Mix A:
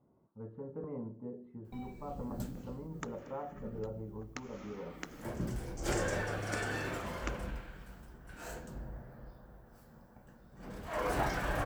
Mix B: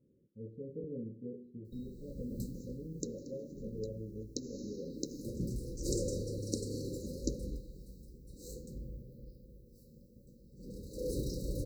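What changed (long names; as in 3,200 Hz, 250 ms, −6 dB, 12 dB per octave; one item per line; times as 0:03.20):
second sound +9.0 dB
master: add linear-phase brick-wall band-stop 570–3,800 Hz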